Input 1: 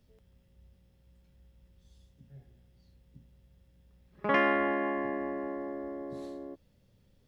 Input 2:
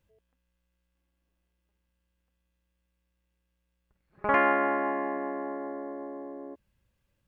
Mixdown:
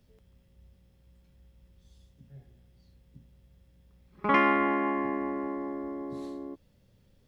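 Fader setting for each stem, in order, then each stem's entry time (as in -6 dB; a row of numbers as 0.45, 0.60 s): +2.0, -6.5 dB; 0.00, 0.00 s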